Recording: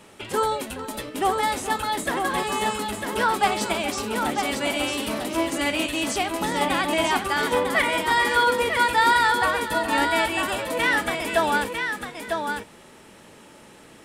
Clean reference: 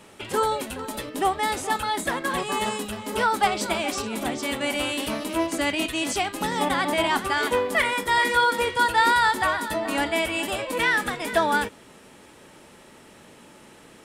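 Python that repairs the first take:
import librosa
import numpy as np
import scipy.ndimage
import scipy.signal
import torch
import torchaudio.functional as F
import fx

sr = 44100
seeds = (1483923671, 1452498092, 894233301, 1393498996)

y = fx.fix_echo_inverse(x, sr, delay_ms=950, level_db=-5.5)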